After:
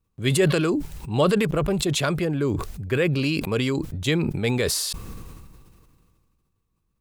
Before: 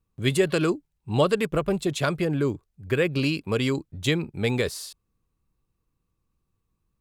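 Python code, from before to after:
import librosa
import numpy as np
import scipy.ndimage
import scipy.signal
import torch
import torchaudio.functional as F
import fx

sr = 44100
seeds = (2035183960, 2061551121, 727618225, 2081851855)

y = fx.sustainer(x, sr, db_per_s=27.0)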